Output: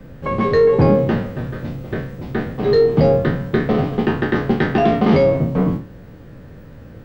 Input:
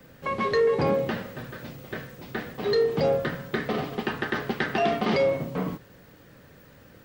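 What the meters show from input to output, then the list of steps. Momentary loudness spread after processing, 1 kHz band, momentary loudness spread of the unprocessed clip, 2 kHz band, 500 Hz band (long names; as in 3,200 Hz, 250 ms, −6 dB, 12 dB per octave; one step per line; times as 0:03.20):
13 LU, +6.5 dB, 15 LU, +4.0 dB, +8.5 dB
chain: peak hold with a decay on every bin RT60 0.38 s
spectral tilt −3 dB per octave
level +5 dB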